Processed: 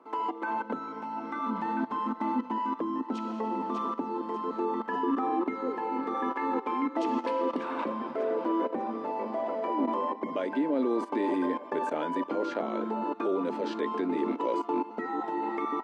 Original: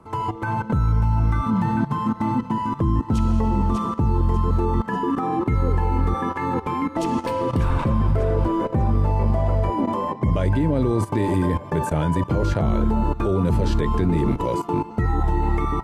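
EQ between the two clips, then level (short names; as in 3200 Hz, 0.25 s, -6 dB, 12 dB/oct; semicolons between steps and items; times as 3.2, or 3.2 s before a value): elliptic high-pass 250 Hz, stop band 60 dB; LPF 4100 Hz 12 dB/oct; -4.5 dB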